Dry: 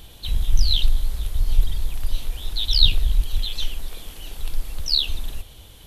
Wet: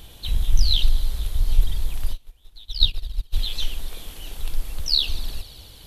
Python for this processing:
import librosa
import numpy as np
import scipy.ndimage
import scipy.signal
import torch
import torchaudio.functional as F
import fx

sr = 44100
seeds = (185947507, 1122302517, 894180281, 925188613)

y = fx.echo_wet_highpass(x, sr, ms=73, feedback_pct=84, hz=4400.0, wet_db=-17.5)
y = fx.upward_expand(y, sr, threshold_db=-25.0, expansion=2.5, at=(2.12, 3.32), fade=0.02)